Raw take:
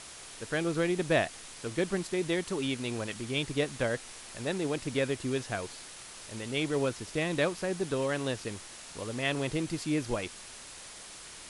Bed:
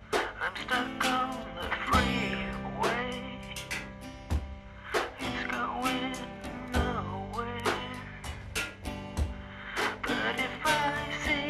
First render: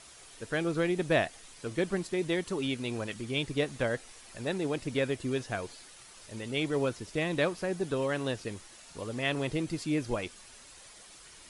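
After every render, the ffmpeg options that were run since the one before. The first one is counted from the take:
-af "afftdn=nr=8:nf=-47"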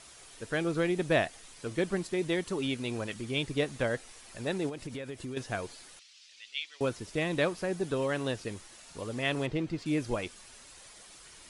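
-filter_complex "[0:a]asettb=1/sr,asplit=3[s0][s1][s2];[s0]atrim=end=4.694[s3];[s1]atrim=start=4.69:end=5.37,asetpts=PTS-STARTPTS,afade=t=in:d=0.004:c=qsin,afade=t=out:st=0.676:d=0.004:c=qsin,acompressor=threshold=0.0178:ratio=8:attack=3.2:release=140:knee=1:detection=peak[s4];[s2]atrim=start=5.366[s5];[s3][s4]acrossfade=d=0.004:c1=hsin:c2=qsin[s6];[s6][s5]acrossfade=d=0.004:c1=qsin:c2=hsin,asettb=1/sr,asplit=3[s7][s8][s9];[s7]atrim=end=5.994[s10];[s8]atrim=start=5.99:end=6.81,asetpts=PTS-STARTPTS,afade=t=in:d=0.004:c=qsin,afade=t=out:st=0.816:d=0.004:c=qsin,asuperpass=centerf=3800:order=4:qfactor=1.1[s11];[s9]atrim=start=6.806[s12];[s10][s11]acrossfade=d=0.004:c1=hsin:c2=qsin[s13];[s13][s12]acrossfade=d=0.004:c1=qsin:c2=hsin,asettb=1/sr,asplit=3[s14][s15][s16];[s14]atrim=end=9.464[s17];[s15]atrim=start=9.46:end=9.86,asetpts=PTS-STARTPTS,afade=t=in:d=0.004:c=qsin,afade=t=out:st=0.396:d=0.004:c=qsin,adynamicsmooth=sensitivity=2.5:basefreq=4100[s18];[s16]atrim=start=9.856[s19];[s17][s18]acrossfade=d=0.004:c1=hsin:c2=qsin[s20];[s20][s19]acrossfade=d=0.004:c1=qsin:c2=hsin"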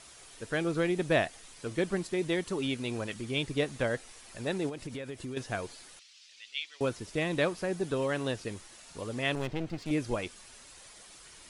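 -filter_complex "[0:a]asettb=1/sr,asplit=3[s0][s1][s2];[s0]atrim=end=9.354[s3];[s1]atrim=start=9.35:end=9.91,asetpts=PTS-STARTPTS,afade=t=in:d=0.004:c=qsin,afade=t=out:st=0.556:d=0.004:c=qsin,aeval=exprs='clip(val(0),-1,0.00631)':c=same[s4];[s2]atrim=start=9.906[s5];[s3][s4]acrossfade=d=0.004:c1=hsin:c2=qsin[s6];[s6][s5]acrossfade=d=0.004:c1=qsin:c2=hsin"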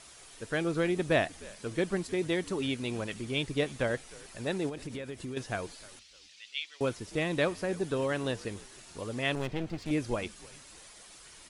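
-filter_complex "[0:a]asplit=3[s0][s1][s2];[s1]adelay=305,afreqshift=-80,volume=0.0841[s3];[s2]adelay=610,afreqshift=-160,volume=0.0269[s4];[s0][s3][s4]amix=inputs=3:normalize=0"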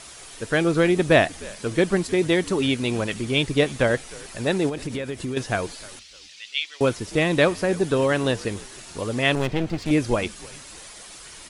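-af "volume=3.16"

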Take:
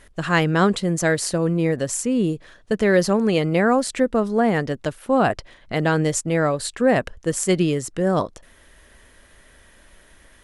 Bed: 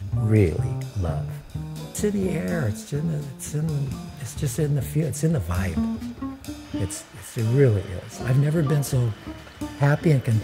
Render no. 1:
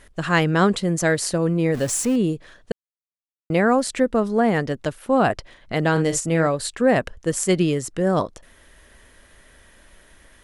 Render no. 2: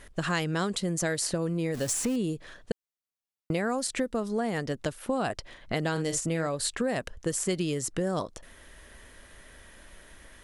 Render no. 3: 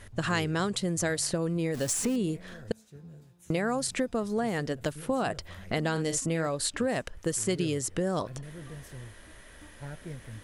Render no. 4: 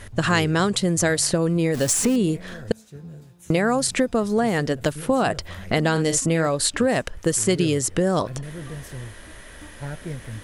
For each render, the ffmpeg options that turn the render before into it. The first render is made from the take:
-filter_complex "[0:a]asettb=1/sr,asplit=3[s0][s1][s2];[s0]atrim=end=1.744[s3];[s1]atrim=start=1.74:end=2.16,asetpts=PTS-STARTPTS,afade=t=in:d=0.004:c=qsin,afade=t=out:st=0.416:d=0.004:c=qsin,aeval=exprs='val(0)+0.5*0.0376*sgn(val(0))':c=same[s4];[s2]atrim=start=2.156[s5];[s3][s4]acrossfade=d=0.004:c1=hsin:c2=qsin[s6];[s6][s5]acrossfade=d=0.004:c1=qsin:c2=hsin,asettb=1/sr,asplit=3[s7][s8][s9];[s7]atrim=end=5.914[s10];[s8]atrim=start=5.91:end=6.47,asetpts=PTS-STARTPTS,afade=t=in:d=0.004:c=qsin,afade=t=out:st=0.556:d=0.004:c=qsin,asplit=2[s11][s12];[s12]adelay=49,volume=0.335[s13];[s11][s13]amix=inputs=2:normalize=0,atrim=end_sample=24696[s14];[s9]atrim=start=6.466[s15];[s10][s14]acrossfade=d=0.004:c1=hsin:c2=qsin[s16];[s16][s15]acrossfade=d=0.004:c1=qsin:c2=hsin,asplit=3[s17][s18][s19];[s17]atrim=end=2.72,asetpts=PTS-STARTPTS,afade=t=out:st=2.716:d=0.004:c=hsin[s20];[s18]atrim=start=2.72:end=3.5,asetpts=PTS-STARTPTS,volume=0[s21];[s19]atrim=start=3.5,asetpts=PTS-STARTPTS,afade=t=in:d=0.004:c=hsin[s22];[s20][s21][s22]concat=n=3:v=0:a=1"
-filter_complex "[0:a]acrossover=split=3900[s0][s1];[s0]acompressor=threshold=0.0447:ratio=5[s2];[s1]alimiter=limit=0.0944:level=0:latency=1:release=148[s3];[s2][s3]amix=inputs=2:normalize=0"
-filter_complex "[1:a]volume=0.075[s0];[0:a][s0]amix=inputs=2:normalize=0"
-af "volume=2.66"

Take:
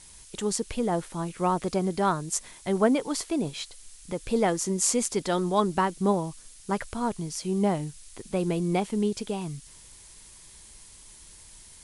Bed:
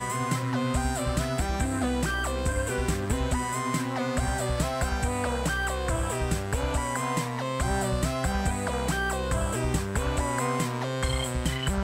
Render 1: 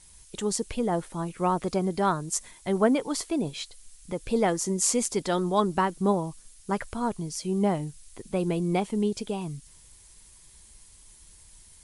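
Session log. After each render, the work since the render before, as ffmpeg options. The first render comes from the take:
-af "afftdn=nr=6:nf=-50"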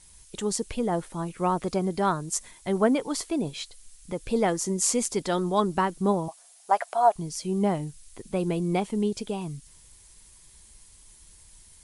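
-filter_complex "[0:a]asettb=1/sr,asplit=3[s0][s1][s2];[s0]atrim=end=6.284[s3];[s1]atrim=start=6.28:end=7.16,asetpts=PTS-STARTPTS,afade=t=in:d=0.004:c=qsin,afade=t=out:st=0.876:d=0.004:c=qsin,highpass=f=700:t=q:w=8.7[s4];[s2]atrim=start=7.156[s5];[s3][s4]acrossfade=d=0.004:c1=hsin:c2=qsin[s6];[s6][s5]acrossfade=d=0.004:c1=qsin:c2=hsin"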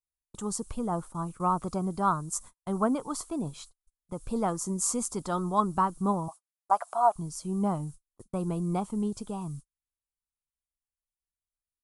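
-af "agate=range=0.00631:threshold=0.01:ratio=16:detection=peak,firequalizer=gain_entry='entry(110,0);entry(420,-9);entry(1200,4);entry(1800,-16);entry(7800,-3)':delay=0.05:min_phase=1"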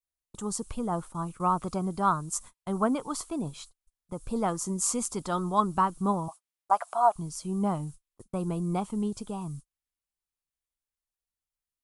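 -af "adynamicequalizer=threshold=0.00501:dfrequency=2700:dqfactor=0.99:tfrequency=2700:tqfactor=0.99:attack=5:release=100:ratio=0.375:range=3:mode=boostabove:tftype=bell"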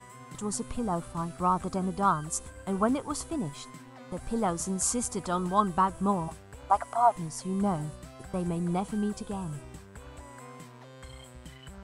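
-filter_complex "[1:a]volume=0.112[s0];[0:a][s0]amix=inputs=2:normalize=0"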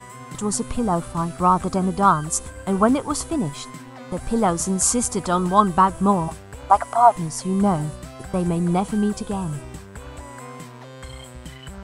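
-af "volume=2.82"

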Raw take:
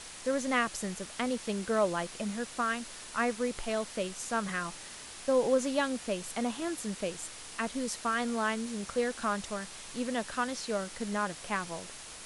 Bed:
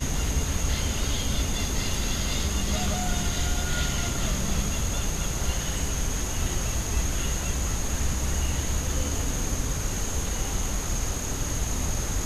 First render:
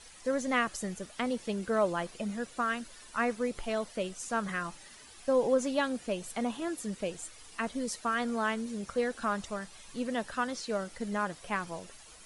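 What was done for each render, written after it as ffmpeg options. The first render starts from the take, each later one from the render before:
-af "afftdn=nr=11:nf=-46"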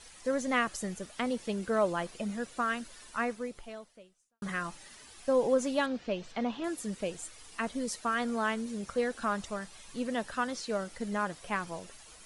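-filter_complex "[0:a]asettb=1/sr,asplit=3[s0][s1][s2];[s0]atrim=end=5.864[s3];[s1]atrim=start=5.86:end=6.64,asetpts=PTS-STARTPTS,afade=t=in:d=0.004:c=qsin,afade=t=out:st=0.776:d=0.004:c=qsin,lowpass=f=5200:w=0.5412,lowpass=f=5200:w=1.3066[s4];[s2]atrim=start=6.636[s5];[s3][s4]acrossfade=d=0.004:c1=hsin:c2=qsin[s6];[s6][s5]acrossfade=d=0.004:c1=qsin:c2=hsin,asplit=2[s7][s8];[s7]atrim=end=4.42,asetpts=PTS-STARTPTS,afade=t=out:st=3.08:d=1.34:c=qua[s9];[s8]atrim=start=4.42,asetpts=PTS-STARTPTS,afade=t=in:d=0.004:c=hsin[s10];[s9][s10]concat=n=2:v=0:a=1"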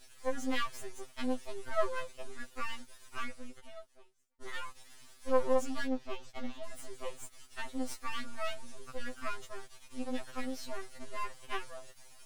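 -af "aeval=exprs='max(val(0),0)':c=same,afftfilt=real='re*2.45*eq(mod(b,6),0)':imag='im*2.45*eq(mod(b,6),0)':win_size=2048:overlap=0.75"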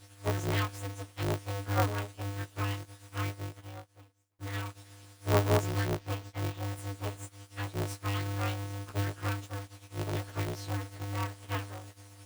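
-af "acrusher=bits=6:mode=log:mix=0:aa=0.000001,aeval=exprs='val(0)*sgn(sin(2*PI*100*n/s))':c=same"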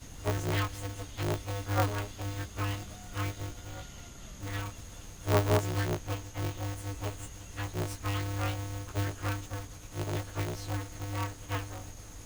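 -filter_complex "[1:a]volume=0.1[s0];[0:a][s0]amix=inputs=2:normalize=0"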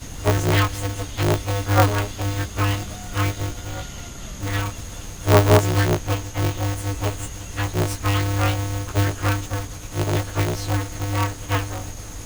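-af "volume=3.98,alimiter=limit=0.708:level=0:latency=1"

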